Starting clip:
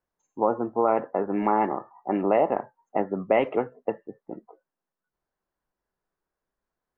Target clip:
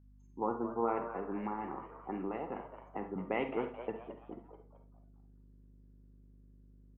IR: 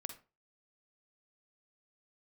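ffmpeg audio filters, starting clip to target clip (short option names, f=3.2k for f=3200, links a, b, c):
-filter_complex "[0:a]equalizer=f=610:w=4.2:g=-13.5,asettb=1/sr,asplit=3[a][b][c];[a]atrim=end=1.024[d];[b]atrim=start=1.02:end=3.16,asetpts=PTS-STARTPTS,afade=t=in:d=0.004:c=qsin,afade=t=out:st=2.136:d=0.004:c=qsin,acrossover=split=120[e][f];[f]acompressor=threshold=-27dB:ratio=6[g];[e][g]amix=inputs=2:normalize=0[h];[c]atrim=start=3.156[i];[d][h]acrossfade=d=0.004:c1=hsin:c2=qsin[j];[j][i]acrossfade=d=0.004:c1=qsin:c2=hsin,aeval=exprs='val(0)+0.00282*(sin(2*PI*50*n/s)+sin(2*PI*2*50*n/s)/2+sin(2*PI*3*50*n/s)/3+sin(2*PI*4*50*n/s)/4+sin(2*PI*5*50*n/s)/5)':c=same,asplit=5[k][l][m][n][o];[l]adelay=217,afreqshift=120,volume=-12dB[p];[m]adelay=434,afreqshift=240,volume=-20dB[q];[n]adelay=651,afreqshift=360,volume=-27.9dB[r];[o]adelay=868,afreqshift=480,volume=-35.9dB[s];[k][p][q][r][s]amix=inputs=5:normalize=0[t];[1:a]atrim=start_sample=2205[u];[t][u]afir=irnorm=-1:irlink=0,volume=-5dB"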